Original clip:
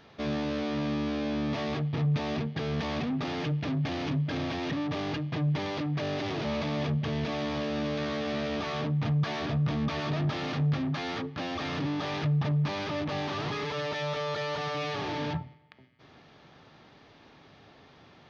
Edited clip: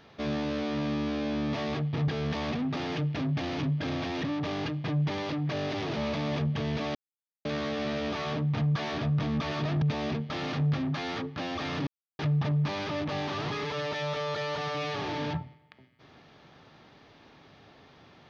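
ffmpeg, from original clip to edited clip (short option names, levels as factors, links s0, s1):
-filter_complex "[0:a]asplit=8[s0][s1][s2][s3][s4][s5][s6][s7];[s0]atrim=end=2.082[s8];[s1]atrim=start=2.558:end=7.43,asetpts=PTS-STARTPTS,afade=t=out:st=4.868:d=0.004:c=hsin[s9];[s2]atrim=start=7.43:end=7.93,asetpts=PTS-STARTPTS,volume=0[s10];[s3]atrim=start=7.93:end=10.302,asetpts=PTS-STARTPTS,afade=t=in:d=0.004:c=hsin[s11];[s4]atrim=start=2.078:end=2.562[s12];[s5]atrim=start=10.298:end=11.87,asetpts=PTS-STARTPTS,afade=t=out:st=1.568:d=0.004:c=hsin[s13];[s6]atrim=start=11.87:end=12.19,asetpts=PTS-STARTPTS,volume=0[s14];[s7]atrim=start=12.19,asetpts=PTS-STARTPTS,afade=t=in:d=0.004:c=hsin[s15];[s9][s10][s11]concat=n=3:v=0:a=1[s16];[s8][s16]acrossfade=d=0.004:c1=hsin:c2=hsin[s17];[s17][s12]acrossfade=d=0.004:c1=hsin:c2=hsin[s18];[s13][s14][s15]concat=n=3:v=0:a=1[s19];[s18][s19]acrossfade=d=0.004:c1=hsin:c2=hsin"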